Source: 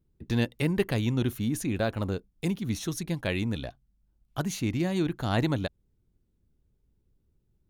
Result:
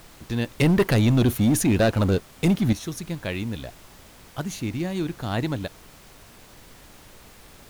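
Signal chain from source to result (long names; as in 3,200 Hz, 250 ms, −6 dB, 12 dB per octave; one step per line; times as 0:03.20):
0:00.55–0:02.73: leveller curve on the samples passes 3
background noise pink −48 dBFS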